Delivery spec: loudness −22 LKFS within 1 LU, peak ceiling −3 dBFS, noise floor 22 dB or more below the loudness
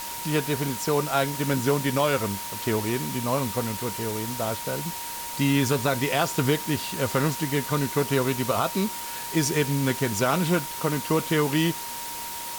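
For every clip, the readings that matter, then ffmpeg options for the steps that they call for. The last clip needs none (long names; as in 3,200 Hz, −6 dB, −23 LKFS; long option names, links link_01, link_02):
interfering tone 940 Hz; level of the tone −37 dBFS; background noise floor −34 dBFS; target noise floor −48 dBFS; integrated loudness −25.5 LKFS; sample peak −9.5 dBFS; target loudness −22.0 LKFS
→ -af "bandreject=frequency=940:width=30"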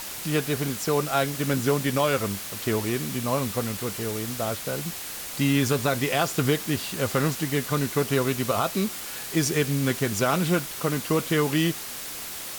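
interfering tone none found; background noise floor −36 dBFS; target noise floor −48 dBFS
→ -af "afftdn=noise_reduction=12:noise_floor=-36"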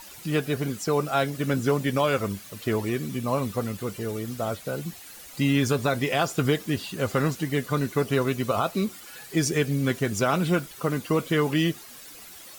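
background noise floor −45 dBFS; target noise floor −49 dBFS
→ -af "afftdn=noise_reduction=6:noise_floor=-45"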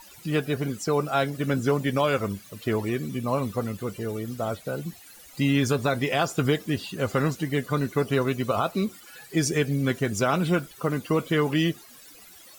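background noise floor −49 dBFS; integrated loudness −26.5 LKFS; sample peak −10.0 dBFS; target loudness −22.0 LKFS
→ -af "volume=4.5dB"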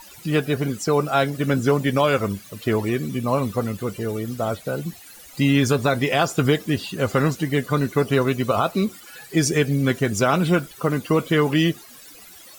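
integrated loudness −22.0 LKFS; sample peak −5.5 dBFS; background noise floor −45 dBFS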